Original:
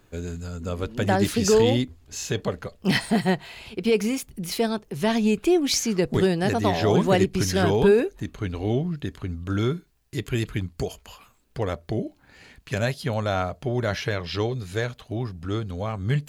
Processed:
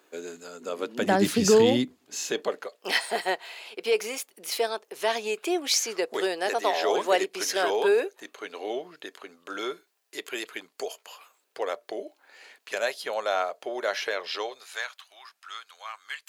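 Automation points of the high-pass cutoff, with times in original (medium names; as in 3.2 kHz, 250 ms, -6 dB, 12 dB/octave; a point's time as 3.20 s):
high-pass 24 dB/octave
0.74 s 320 Hz
1.44 s 120 Hz
2.81 s 440 Hz
14.30 s 440 Hz
15.03 s 1.1 kHz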